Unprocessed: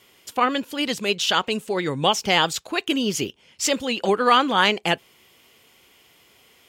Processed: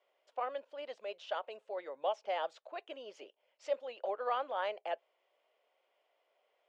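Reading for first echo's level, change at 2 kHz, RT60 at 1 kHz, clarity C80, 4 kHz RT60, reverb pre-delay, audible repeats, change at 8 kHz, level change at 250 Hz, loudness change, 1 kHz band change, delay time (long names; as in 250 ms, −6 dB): no echo audible, −23.0 dB, no reverb audible, no reverb audible, no reverb audible, no reverb audible, no echo audible, below −35 dB, −33.5 dB, −18.0 dB, −16.0 dB, no echo audible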